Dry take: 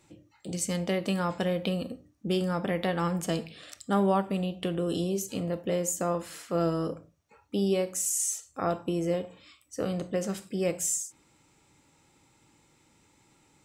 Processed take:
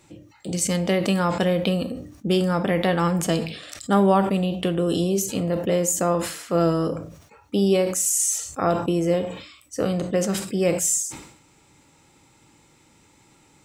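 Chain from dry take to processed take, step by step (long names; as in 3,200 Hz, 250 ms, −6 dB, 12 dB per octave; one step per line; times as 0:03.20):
level that may fall only so fast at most 79 dB per second
level +7 dB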